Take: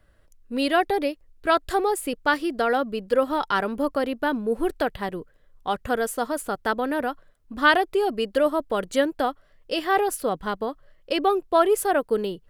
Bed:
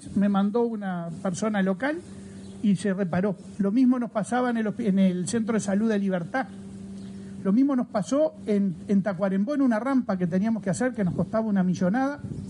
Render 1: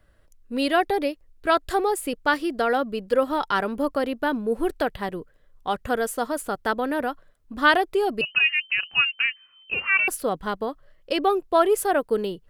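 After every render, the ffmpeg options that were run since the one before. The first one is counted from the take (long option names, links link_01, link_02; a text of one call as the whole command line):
ffmpeg -i in.wav -filter_complex "[0:a]asettb=1/sr,asplit=3[link_01][link_02][link_03];[link_01]atrim=end=8.214[link_04];[link_02]atrim=start=8.21:end=10.08,asetpts=PTS-STARTPTS,afade=type=in:duration=0.004:curve=qsin,afade=type=out:start_time=1.866:duration=0.004:curve=qsin,lowpass=frequency=2600:width_type=q:width=0.5098,lowpass=frequency=2600:width_type=q:width=0.6013,lowpass=frequency=2600:width_type=q:width=0.9,lowpass=frequency=2600:width_type=q:width=2.563,afreqshift=-3100[link_05];[link_03]atrim=start=10.076[link_06];[link_04][link_05]acrossfade=duration=0.004:curve1=hsin:curve2=qsin[link_07];[link_07][link_06]acrossfade=duration=0.004:curve1=qsin:curve2=hsin" out.wav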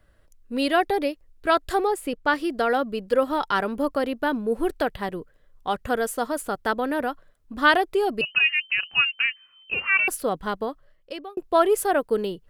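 ffmpeg -i in.wav -filter_complex "[0:a]asettb=1/sr,asplit=3[link_01][link_02][link_03];[link_01]atrim=end=1.874[link_04];[link_02]atrim=start=1.87:end=2.38,asetpts=PTS-STARTPTS,afade=type=in:duration=0.004:curve=qsin,afade=type=out:start_time=0.506:duration=0.004:curve=qsin,highshelf=frequency=4500:gain=-7[link_05];[link_03]atrim=start=2.376[link_06];[link_04][link_05]acrossfade=duration=0.004:curve1=hsin:curve2=qsin[link_07];[link_07][link_06]acrossfade=duration=0.004:curve1=qsin:curve2=hsin,asplit=2[link_08][link_09];[link_08]atrim=end=11.37,asetpts=PTS-STARTPTS,afade=type=out:start_time=10.63:duration=0.74[link_10];[link_09]atrim=start=11.37,asetpts=PTS-STARTPTS,afade=type=in:duration=0.004:curve=hsin[link_11];[link_10][link_11]concat=n=2:v=0:a=1" out.wav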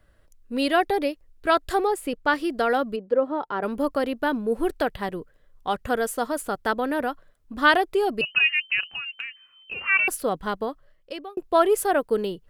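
ffmpeg -i in.wav -filter_complex "[0:a]asplit=3[link_01][link_02][link_03];[link_01]afade=type=out:start_time=2.95:duration=0.02[link_04];[link_02]bandpass=frequency=430:width_type=q:width=0.76,afade=type=in:start_time=2.95:duration=0.02,afade=type=out:start_time=3.62:duration=0.02[link_05];[link_03]afade=type=in:start_time=3.62:duration=0.02[link_06];[link_04][link_05][link_06]amix=inputs=3:normalize=0,asettb=1/sr,asplit=3[link_07][link_08][link_09];[link_07]atrim=end=8.834[link_10];[link_08]atrim=start=8.83:end=9.81,asetpts=PTS-STARTPTS,afade=type=in:duration=0.004:curve=qsin,afade=type=out:start_time=0.976:duration=0.004:curve=qsin,acompressor=threshold=-29dB:ratio=12:attack=3.2:release=140:knee=1:detection=peak[link_11];[link_09]atrim=start=9.806[link_12];[link_10][link_11]acrossfade=duration=0.004:curve1=hsin:curve2=qsin[link_13];[link_13][link_12]acrossfade=duration=0.004:curve1=qsin:curve2=hsin" out.wav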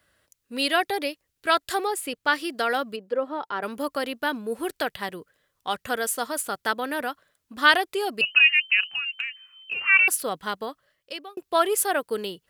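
ffmpeg -i in.wav -af "highpass=98,tiltshelf=frequency=1300:gain=-6.5" out.wav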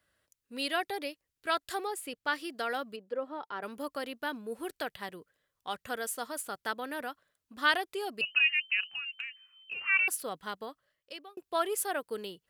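ffmpeg -i in.wav -af "volume=-9dB" out.wav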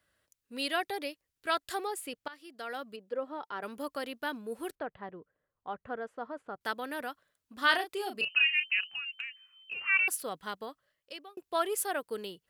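ffmpeg -i in.wav -filter_complex "[0:a]asettb=1/sr,asplit=3[link_01][link_02][link_03];[link_01]atrim=end=4.754[link_04];[link_02]atrim=start=4.75:end=6.61,asetpts=PTS-STARTPTS,afade=type=in:duration=0.004:curve=qsin,afade=type=out:start_time=1.856:duration=0.004:curve=qsin,lowpass=1200[link_05];[link_03]atrim=start=6.606[link_06];[link_04][link_05]acrossfade=duration=0.004:curve1=hsin:curve2=qsin[link_07];[link_07][link_06]acrossfade=duration=0.004:curve1=qsin:curve2=hsin,asettb=1/sr,asplit=3[link_08][link_09][link_10];[link_08]atrim=end=7.584[link_11];[link_09]atrim=start=7.58:end=8.8,asetpts=PTS-STARTPTS,afade=type=in:duration=0.004:curve=qsin,afade=type=out:start_time=1.216:duration=0.004:curve=qsin,asplit=2[link_12][link_13];[link_13]adelay=35,volume=-8dB[link_14];[link_12][link_14]amix=inputs=2:normalize=0,atrim=end_sample=53802[link_15];[link_10]atrim=start=8.796[link_16];[link_11][link_15]acrossfade=duration=0.004:curve1=hsin:curve2=qsin[link_17];[link_17][link_16]acrossfade=duration=0.004:curve1=qsin:curve2=hsin,asplit=2[link_18][link_19];[link_18]atrim=end=2.28,asetpts=PTS-STARTPTS,afade=type=out:start_time=2.276:duration=0.004:curve=hsin:silence=0.0891251[link_20];[link_19]atrim=start=2.28,asetpts=PTS-STARTPTS,afade=type=in:duration=0.88:silence=0.0891251[link_21];[link_20][link_21]concat=n=2:v=0:a=1" out.wav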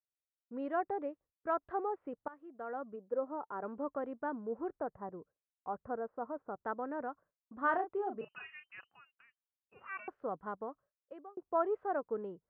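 ffmpeg -i in.wav -af "lowpass=frequency=1200:width=0.5412,lowpass=frequency=1200:width=1.3066,agate=range=-33dB:threshold=-56dB:ratio=3:detection=peak" out.wav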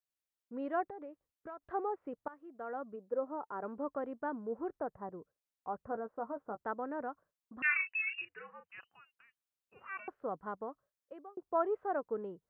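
ffmpeg -i in.wav -filter_complex "[0:a]asettb=1/sr,asplit=3[link_01][link_02][link_03];[link_01]atrim=end=0.884[link_04];[link_02]atrim=start=0.88:end=1.62,asetpts=PTS-STARTPTS,afade=type=in:duration=0.004:curve=qsin,afade=type=out:start_time=0.736:duration=0.004:curve=qsin,acompressor=threshold=-43dB:ratio=6:attack=3.2:release=140:knee=1:detection=peak[link_05];[link_03]atrim=start=1.616[link_06];[link_04][link_05]acrossfade=duration=0.004:curve1=hsin:curve2=qsin[link_07];[link_07][link_06]acrossfade=duration=0.004:curve1=qsin:curve2=hsin,asettb=1/sr,asplit=3[link_08][link_09][link_10];[link_08]atrim=end=5.904[link_11];[link_09]atrim=start=5.9:end=6.62,asetpts=PTS-STARTPTS,afade=type=in:duration=0.004:curve=qsin,afade=type=out:start_time=0.716:duration=0.004:curve=qsin,asplit=2[link_12][link_13];[link_13]adelay=14,volume=-8.5dB[link_14];[link_12][link_14]amix=inputs=2:normalize=0,atrim=end_sample=31752[link_15];[link_10]atrim=start=6.616[link_16];[link_11][link_15]acrossfade=duration=0.004:curve1=hsin:curve2=qsin[link_17];[link_17][link_16]acrossfade=duration=0.004:curve1=qsin:curve2=hsin,asettb=1/sr,asplit=3[link_18][link_19][link_20];[link_18]atrim=end=7.624[link_21];[link_19]atrim=start=7.62:end=8.69,asetpts=PTS-STARTPTS,afade=type=in:duration=0.004:curve=qsin,afade=type=out:start_time=1.066:duration=0.004:curve=qsin,lowpass=frequency=2600:width_type=q:width=0.5098,lowpass=frequency=2600:width_type=q:width=0.6013,lowpass=frequency=2600:width_type=q:width=0.9,lowpass=frequency=2600:width_type=q:width=2.563,afreqshift=-3000[link_22];[link_20]atrim=start=8.686[link_23];[link_21][link_22]acrossfade=duration=0.004:curve1=hsin:curve2=qsin[link_24];[link_24][link_23]acrossfade=duration=0.004:curve1=qsin:curve2=hsin" out.wav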